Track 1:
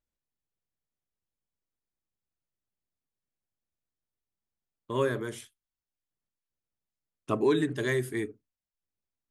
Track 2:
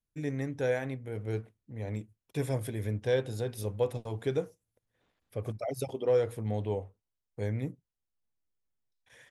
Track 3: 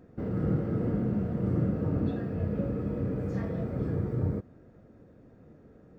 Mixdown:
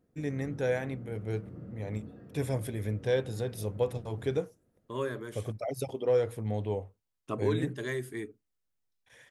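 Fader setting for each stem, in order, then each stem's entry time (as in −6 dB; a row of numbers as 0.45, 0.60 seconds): −6.0, 0.0, −17.5 decibels; 0.00, 0.00, 0.00 seconds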